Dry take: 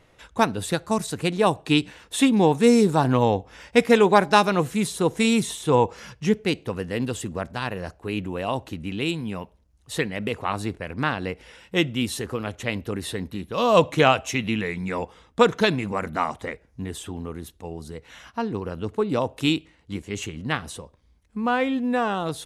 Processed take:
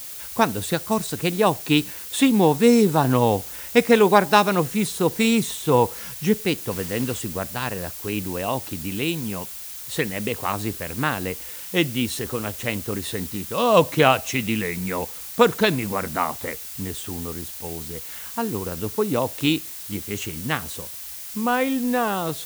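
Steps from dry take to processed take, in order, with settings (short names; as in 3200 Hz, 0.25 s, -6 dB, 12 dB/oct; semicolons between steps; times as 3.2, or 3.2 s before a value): added noise blue -37 dBFS; 6.71–7.19 requantised 6-bit, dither none; gain +1 dB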